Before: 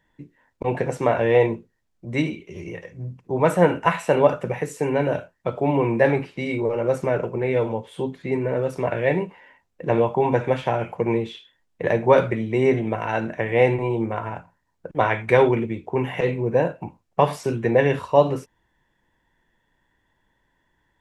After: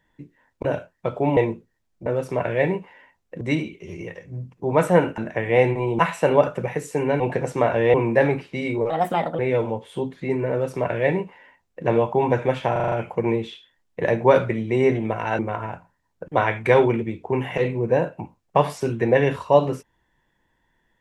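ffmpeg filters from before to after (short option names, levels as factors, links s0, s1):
-filter_complex "[0:a]asplit=17[s0][s1][s2][s3][s4][s5][s6][s7][s8][s9][s10][s11][s12][s13][s14][s15][s16];[s0]atrim=end=0.652[s17];[s1]atrim=start=5.058:end=5.782[s18];[s2]atrim=start=1.388:end=2.082[s19];[s3]atrim=start=8.528:end=9.882[s20];[s4]atrim=start=2.078:end=3.852[s21];[s5]atrim=start=13.208:end=14.022[s22];[s6]atrim=start=3.848:end=5.062[s23];[s7]atrim=start=0.648:end=1.392[s24];[s8]atrim=start=5.778:end=6.744[s25];[s9]atrim=start=6.74:end=7.41,asetpts=PTS-STARTPTS,asetrate=60417,aresample=44100,atrim=end_sample=21567,asetpts=PTS-STARTPTS[s26];[s10]atrim=start=7.406:end=10.782[s27];[s11]atrim=start=10.738:end=10.782[s28];[s12]atrim=start=10.738:end=10.782[s29];[s13]atrim=start=10.738:end=10.782[s30];[s14]atrim=start=10.738:end=10.782[s31];[s15]atrim=start=10.738:end=13.212[s32];[s16]atrim=start=14.018[s33];[s17][s18]acrossfade=d=0.004:c1=hsin:c2=hsin[s34];[s34][s19]acrossfade=d=0.004:c1=hsin:c2=hsin[s35];[s35][s20]acrossfade=d=0.004:c1=hsin:c2=hsin[s36];[s36][s21]acrossfade=d=0.004:c1=hsin:c2=hsin[s37];[s37][s22]acrossfade=d=0.004:c1=hsin:c2=hsin[s38];[s38][s23]acrossfade=d=0.004:c1=hsin:c2=hsin[s39];[s39][s24]acrossfade=d=0.004:c1=hsin:c2=hsin[s40];[s40][s25]acrossfade=d=0.004:c1=hsin:c2=hsin[s41];[s41][s26]acrossfade=d=0.004:c1=hsin:c2=hsin[s42];[s42][s27]acrossfade=d=0.004:c1=hsin:c2=hsin[s43];[s43][s28]acrossfade=d=0.004:c1=hsin:c2=hsin[s44];[s44][s29]acrossfade=d=0.004:c1=hsin:c2=hsin[s45];[s45][s30]acrossfade=d=0.004:c1=hsin:c2=hsin[s46];[s46][s31]acrossfade=d=0.004:c1=hsin:c2=hsin[s47];[s47][s32]acrossfade=d=0.004:c1=hsin:c2=hsin[s48];[s48][s33]acrossfade=d=0.004:c1=hsin:c2=hsin"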